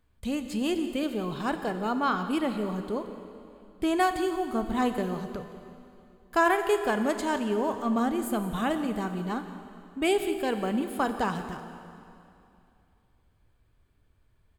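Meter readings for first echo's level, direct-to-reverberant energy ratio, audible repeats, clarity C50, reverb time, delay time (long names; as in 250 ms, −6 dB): −17.5 dB, 7.5 dB, 1, 8.5 dB, 2.7 s, 175 ms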